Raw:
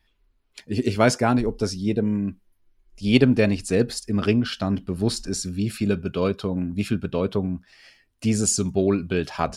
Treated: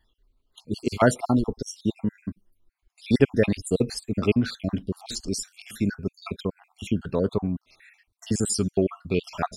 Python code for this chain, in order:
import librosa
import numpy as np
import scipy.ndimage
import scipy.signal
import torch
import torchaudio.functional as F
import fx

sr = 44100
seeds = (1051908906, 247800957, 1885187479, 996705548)

y = fx.spec_dropout(x, sr, seeds[0], share_pct=54)